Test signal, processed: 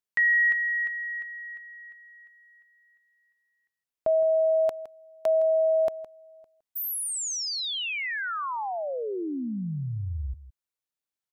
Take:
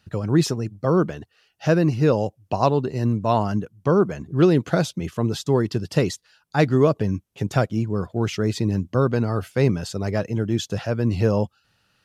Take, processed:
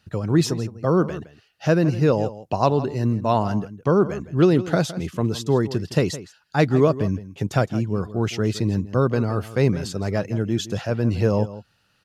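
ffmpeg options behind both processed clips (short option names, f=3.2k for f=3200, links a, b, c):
-filter_complex "[0:a]asplit=2[a][b];[b]adelay=163.3,volume=-15dB,highshelf=f=4k:g=-3.67[c];[a][c]amix=inputs=2:normalize=0"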